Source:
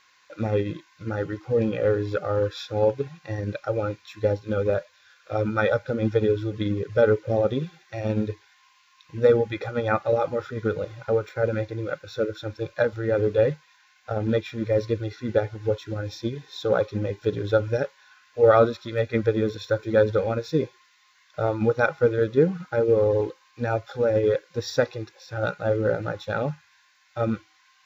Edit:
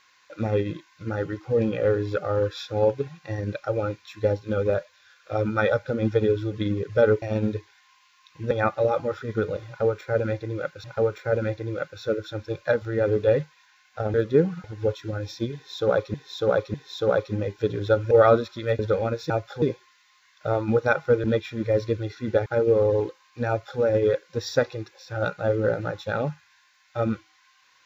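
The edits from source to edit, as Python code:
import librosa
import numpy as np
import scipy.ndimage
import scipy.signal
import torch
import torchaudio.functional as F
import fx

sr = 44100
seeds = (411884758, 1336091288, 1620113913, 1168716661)

y = fx.edit(x, sr, fx.cut(start_s=7.22, length_s=0.74),
    fx.cut(start_s=9.25, length_s=0.54),
    fx.repeat(start_s=10.95, length_s=1.17, count=2),
    fx.swap(start_s=14.25, length_s=1.22, other_s=22.17, other_length_s=0.5),
    fx.repeat(start_s=16.37, length_s=0.6, count=3),
    fx.cut(start_s=17.74, length_s=0.66),
    fx.cut(start_s=19.08, length_s=0.96),
    fx.duplicate(start_s=23.69, length_s=0.32, to_s=20.55), tone=tone)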